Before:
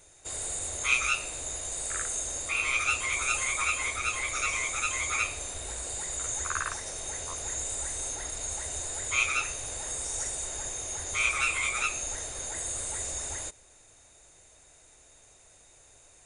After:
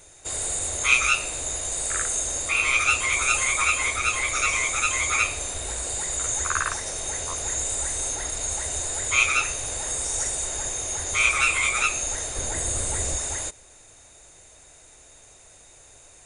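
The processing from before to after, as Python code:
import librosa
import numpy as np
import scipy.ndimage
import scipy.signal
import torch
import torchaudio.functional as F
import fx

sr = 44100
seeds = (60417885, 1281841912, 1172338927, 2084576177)

y = fx.low_shelf(x, sr, hz=400.0, db=8.0, at=(12.36, 13.16))
y = F.gain(torch.from_numpy(y), 6.5).numpy()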